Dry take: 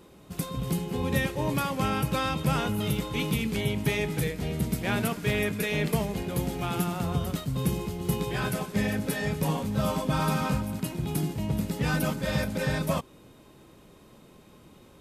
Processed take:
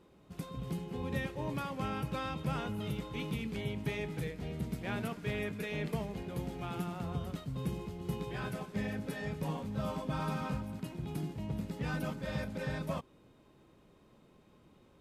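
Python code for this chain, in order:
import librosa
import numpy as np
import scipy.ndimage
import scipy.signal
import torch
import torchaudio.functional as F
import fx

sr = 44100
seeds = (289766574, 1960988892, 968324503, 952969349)

y = fx.lowpass(x, sr, hz=3500.0, slope=6)
y = y * 10.0 ** (-9.0 / 20.0)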